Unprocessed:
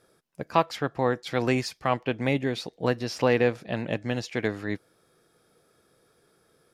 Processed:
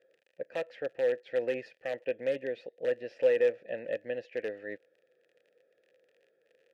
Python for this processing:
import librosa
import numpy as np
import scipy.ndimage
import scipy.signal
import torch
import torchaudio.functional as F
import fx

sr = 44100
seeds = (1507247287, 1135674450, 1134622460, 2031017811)

p1 = fx.tracing_dist(x, sr, depth_ms=0.021)
p2 = fx.high_shelf(p1, sr, hz=3800.0, db=-11.5)
p3 = (np.mod(10.0 ** (15.0 / 20.0) * p2 + 1.0, 2.0) - 1.0) / 10.0 ** (15.0 / 20.0)
p4 = p2 + (p3 * 10.0 ** (-4.5 / 20.0))
p5 = fx.dmg_crackle(p4, sr, seeds[0], per_s=46.0, level_db=-34.0)
y = fx.vowel_filter(p5, sr, vowel='e')